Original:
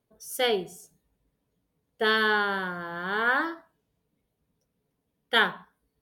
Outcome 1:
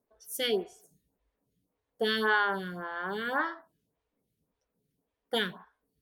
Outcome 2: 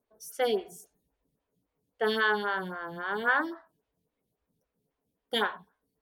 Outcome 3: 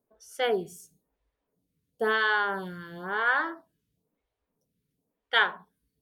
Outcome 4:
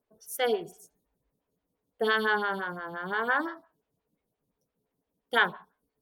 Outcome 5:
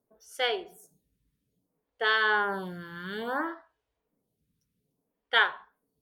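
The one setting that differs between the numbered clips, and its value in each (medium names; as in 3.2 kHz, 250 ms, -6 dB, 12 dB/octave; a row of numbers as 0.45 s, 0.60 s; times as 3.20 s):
lamp-driven phase shifter, rate: 1.8 Hz, 3.7 Hz, 0.99 Hz, 5.8 Hz, 0.6 Hz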